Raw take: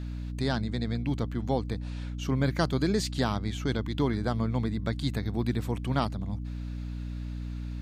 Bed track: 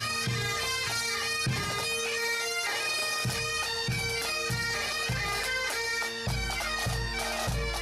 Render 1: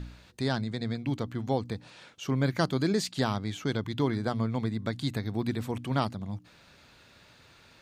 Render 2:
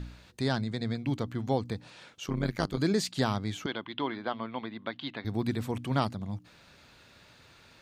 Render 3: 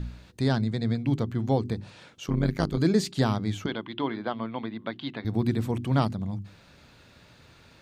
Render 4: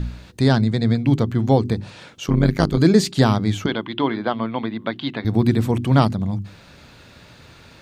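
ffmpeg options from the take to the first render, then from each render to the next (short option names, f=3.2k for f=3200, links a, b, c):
-af "bandreject=f=60:t=h:w=4,bandreject=f=120:t=h:w=4,bandreject=f=180:t=h:w=4,bandreject=f=240:t=h:w=4,bandreject=f=300:t=h:w=4"
-filter_complex "[0:a]asettb=1/sr,asplit=3[a][b][c];[a]atrim=end=2.264[d];[b]atrim=start=2.26:end=2.78,asetpts=PTS-STARTPTS,afade=t=in:d=0.004:c=qsin,afade=t=out:st=0.516:d=0.004:c=qsin,tremolo=f=100:d=0.857[e];[c]atrim=start=2.776[f];[d][e]acrossfade=d=0.004:c1=hsin:c2=qsin[g];[g][f]acrossfade=d=0.004:c1=qsin:c2=hsin,asettb=1/sr,asplit=3[h][i][j];[h]atrim=end=3.664[k];[i]atrim=start=3.66:end=5.25,asetpts=PTS-STARTPTS,afade=t=in:d=0.004:c=qsin,afade=t=out:st=1.586:d=0.004:c=qsin,highpass=350,equalizer=f=440:t=q:w=4:g=-6,equalizer=f=1k:t=q:w=4:g=3,equalizer=f=3k:t=q:w=4:g=8,lowpass=f=3.6k:w=0.5412,lowpass=f=3.6k:w=1.3066[l];[j]atrim=start=5.246[m];[k][l]acrossfade=d=0.004:c1=hsin:c2=qsin[n];[n][m]acrossfade=d=0.004:c1=qsin:c2=hsin"
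-af "lowshelf=f=440:g=7.5,bandreject=f=50:t=h:w=6,bandreject=f=100:t=h:w=6,bandreject=f=150:t=h:w=6,bandreject=f=200:t=h:w=6,bandreject=f=250:t=h:w=6,bandreject=f=300:t=h:w=6,bandreject=f=350:t=h:w=6,bandreject=f=400:t=h:w=6"
-af "volume=8.5dB"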